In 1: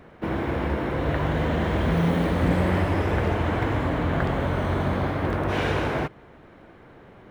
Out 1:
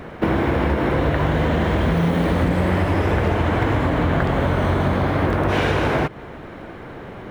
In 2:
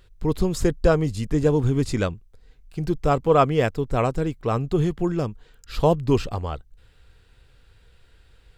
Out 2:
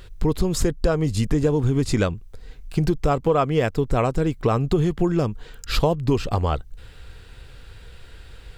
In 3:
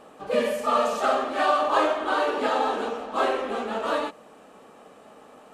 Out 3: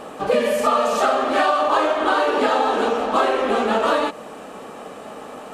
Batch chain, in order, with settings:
compressor 6:1, threshold -29 dBFS; normalise peaks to -6 dBFS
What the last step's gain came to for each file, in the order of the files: +13.0, +12.0, +13.5 dB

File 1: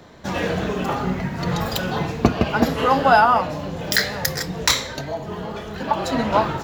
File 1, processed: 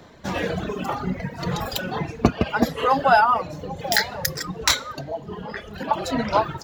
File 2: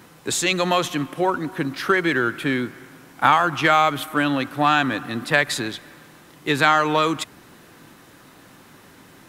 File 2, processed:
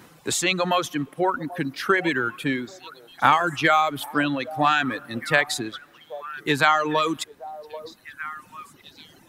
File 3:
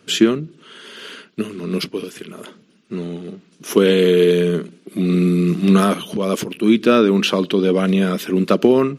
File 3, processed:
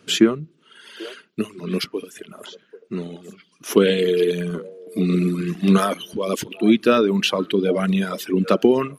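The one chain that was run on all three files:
delay with a stepping band-pass 0.788 s, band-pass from 610 Hz, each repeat 1.4 oct, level -10 dB; reverb removal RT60 1.9 s; gain -1 dB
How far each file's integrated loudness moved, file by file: -2.0, -2.0, -3.5 LU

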